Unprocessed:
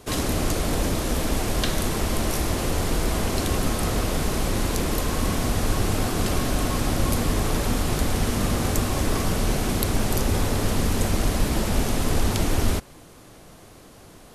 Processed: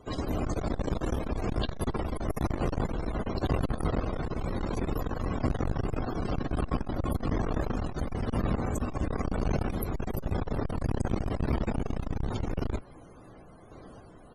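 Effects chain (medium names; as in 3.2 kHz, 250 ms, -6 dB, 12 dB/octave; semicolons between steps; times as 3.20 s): random-step tremolo; loudest bins only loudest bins 64; doubling 16 ms -14 dB; transformer saturation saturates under 220 Hz; trim +1 dB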